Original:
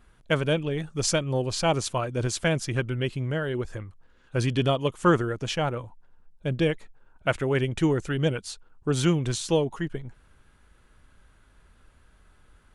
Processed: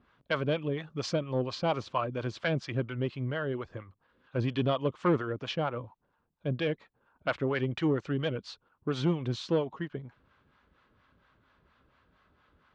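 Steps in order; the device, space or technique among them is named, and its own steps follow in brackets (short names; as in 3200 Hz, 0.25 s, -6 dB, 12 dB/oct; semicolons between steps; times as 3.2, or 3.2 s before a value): guitar amplifier with harmonic tremolo (harmonic tremolo 4.3 Hz, depth 70%, crossover 600 Hz; soft clip -18 dBFS, distortion -16 dB; speaker cabinet 92–4500 Hz, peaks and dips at 260 Hz +3 dB, 560 Hz +3 dB, 1100 Hz +6 dB); gain -1.5 dB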